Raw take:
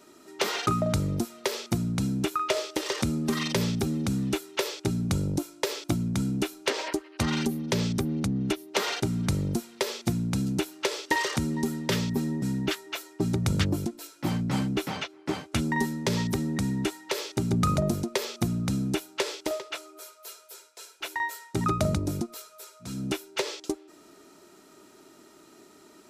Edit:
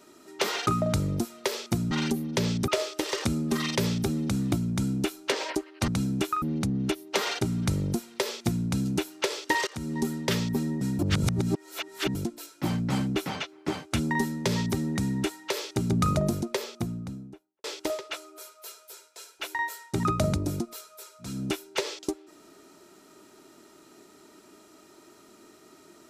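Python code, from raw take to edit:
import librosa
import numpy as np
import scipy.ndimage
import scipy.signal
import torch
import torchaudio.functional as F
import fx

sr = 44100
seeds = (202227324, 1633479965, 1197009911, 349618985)

y = fx.studio_fade_out(x, sr, start_s=17.89, length_s=1.36)
y = fx.edit(y, sr, fx.swap(start_s=1.91, length_s=0.54, other_s=7.26, other_length_s=0.77),
    fx.cut(start_s=4.29, length_s=1.61),
    fx.fade_in_from(start_s=11.28, length_s=0.34, floor_db=-21.0),
    fx.reverse_span(start_s=12.6, length_s=1.16), tone=tone)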